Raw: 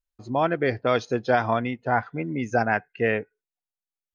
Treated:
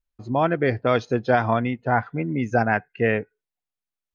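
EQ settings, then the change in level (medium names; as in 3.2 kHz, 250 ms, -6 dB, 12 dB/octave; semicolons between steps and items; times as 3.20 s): tone controls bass +4 dB, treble -6 dB; +1.5 dB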